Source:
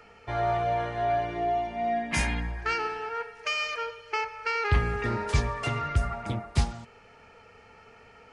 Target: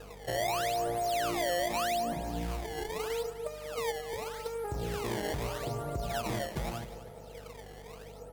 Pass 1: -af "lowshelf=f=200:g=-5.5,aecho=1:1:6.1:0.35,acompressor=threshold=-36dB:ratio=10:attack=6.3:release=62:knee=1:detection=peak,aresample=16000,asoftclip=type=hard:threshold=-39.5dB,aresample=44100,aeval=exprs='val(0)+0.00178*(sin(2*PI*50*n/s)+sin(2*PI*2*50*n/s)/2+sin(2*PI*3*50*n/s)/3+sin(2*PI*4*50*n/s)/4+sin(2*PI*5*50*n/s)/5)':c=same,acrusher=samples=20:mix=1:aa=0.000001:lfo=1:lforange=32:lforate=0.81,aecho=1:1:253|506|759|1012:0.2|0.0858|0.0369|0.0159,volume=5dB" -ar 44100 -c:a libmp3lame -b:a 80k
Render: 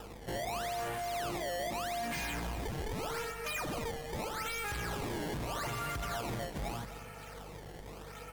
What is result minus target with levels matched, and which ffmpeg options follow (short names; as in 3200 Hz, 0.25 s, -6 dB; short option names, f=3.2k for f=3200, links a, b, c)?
hard clip: distortion +15 dB; 500 Hz band -2.0 dB
-af "lowshelf=f=200:g=-5.5,aecho=1:1:6.1:0.35,acompressor=threshold=-36dB:ratio=10:attack=6.3:release=62:knee=1:detection=peak,lowpass=f=600:t=q:w=1.8,aresample=16000,asoftclip=type=hard:threshold=-31.5dB,aresample=44100,aeval=exprs='val(0)+0.00178*(sin(2*PI*50*n/s)+sin(2*PI*2*50*n/s)/2+sin(2*PI*3*50*n/s)/3+sin(2*PI*4*50*n/s)/4+sin(2*PI*5*50*n/s)/5)':c=same,acrusher=samples=20:mix=1:aa=0.000001:lfo=1:lforange=32:lforate=0.81,aecho=1:1:253|506|759|1012:0.2|0.0858|0.0369|0.0159,volume=5dB" -ar 44100 -c:a libmp3lame -b:a 80k